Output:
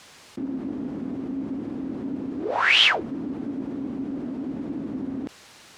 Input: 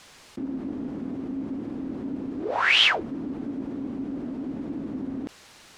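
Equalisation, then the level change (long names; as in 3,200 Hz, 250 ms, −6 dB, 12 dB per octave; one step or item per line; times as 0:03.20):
high-pass filter 60 Hz
+1.5 dB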